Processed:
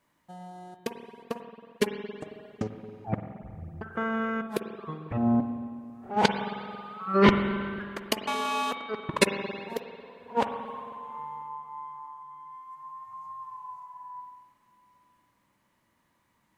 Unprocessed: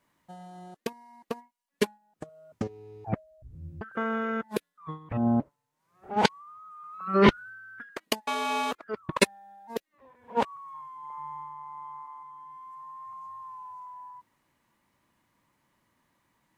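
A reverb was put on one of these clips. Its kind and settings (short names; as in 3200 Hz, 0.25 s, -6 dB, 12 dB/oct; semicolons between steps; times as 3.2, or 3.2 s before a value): spring tank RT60 2.2 s, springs 45/55 ms, chirp 80 ms, DRR 6.5 dB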